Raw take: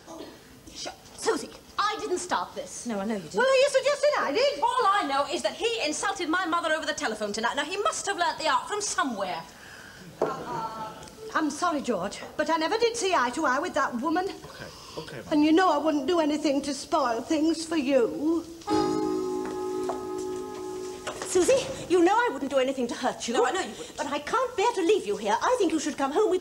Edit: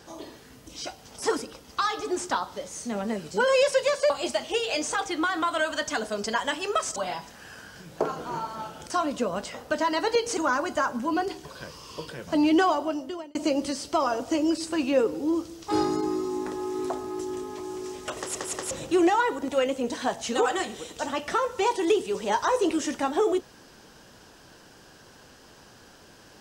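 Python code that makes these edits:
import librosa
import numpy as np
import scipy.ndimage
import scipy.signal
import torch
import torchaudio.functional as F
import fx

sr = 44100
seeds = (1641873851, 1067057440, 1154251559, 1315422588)

y = fx.edit(x, sr, fx.cut(start_s=4.1, length_s=1.1),
    fx.cut(start_s=8.06, length_s=1.11),
    fx.cut(start_s=11.11, length_s=0.47),
    fx.cut(start_s=13.05, length_s=0.31),
    fx.fade_out_span(start_s=15.62, length_s=0.72),
    fx.stutter_over(start_s=21.16, slice_s=0.18, count=3), tone=tone)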